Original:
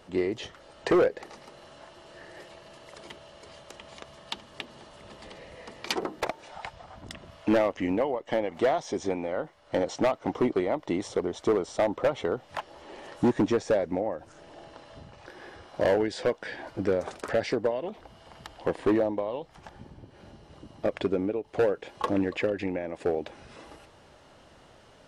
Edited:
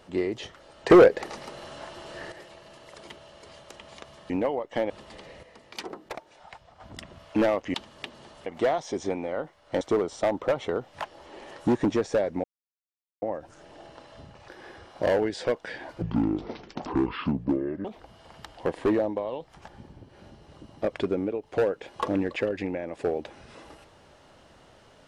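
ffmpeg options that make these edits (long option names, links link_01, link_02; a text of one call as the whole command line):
ffmpeg -i in.wav -filter_complex "[0:a]asplit=13[link_01][link_02][link_03][link_04][link_05][link_06][link_07][link_08][link_09][link_10][link_11][link_12][link_13];[link_01]atrim=end=0.902[link_14];[link_02]atrim=start=0.898:end=2.322,asetpts=PTS-STARTPTS,volume=8dB[link_15];[link_03]atrim=start=2.318:end=4.302[link_16];[link_04]atrim=start=7.858:end=8.462[link_17];[link_05]atrim=start=5.018:end=5.552[link_18];[link_06]atrim=start=5.548:end=6.922,asetpts=PTS-STARTPTS,volume=-7.5dB[link_19];[link_07]atrim=start=6.918:end=7.862[link_20];[link_08]atrim=start=4.298:end=5.022[link_21];[link_09]atrim=start=8.458:end=9.812[link_22];[link_10]atrim=start=11.368:end=14,asetpts=PTS-STARTPTS,afade=type=out:start_time=2.628:duration=0.004:curve=hsin,apad=pad_dur=0.78[link_23];[link_11]atrim=start=14:end=16.804,asetpts=PTS-STARTPTS,afade=type=in:duration=0.004:curve=hsin[link_24];[link_12]atrim=start=16.8:end=17.86,asetpts=PTS-STARTPTS,asetrate=25578,aresample=44100[link_25];[link_13]atrim=start=17.856[link_26];[link_14][link_15]acrossfade=duration=0.004:curve1=hsin:curve2=hsin[link_27];[link_27][link_16]acrossfade=duration=0.004:curve1=hsin:curve2=hsin[link_28];[link_28][link_17]acrossfade=duration=0.004:curve1=hsin:curve2=hsin[link_29];[link_29][link_18]acrossfade=duration=0.004:curve1=hsin:curve2=hsin[link_30];[link_30][link_19]acrossfade=duration=0.004:curve1=hsin:curve2=hsin[link_31];[link_31][link_20]acrossfade=duration=0.004:curve1=hsin:curve2=hsin[link_32];[link_32][link_21]acrossfade=duration=0.004:curve1=hsin:curve2=hsin[link_33];[link_33][link_22]acrossfade=duration=0.004:curve1=hsin:curve2=hsin[link_34];[link_23][link_24]concat=n=2:v=0:a=1[link_35];[link_34][link_35]acrossfade=duration=0.004:curve1=hsin:curve2=hsin[link_36];[link_36][link_25]acrossfade=duration=0.004:curve1=hsin:curve2=hsin[link_37];[link_37][link_26]acrossfade=duration=0.004:curve1=hsin:curve2=hsin" out.wav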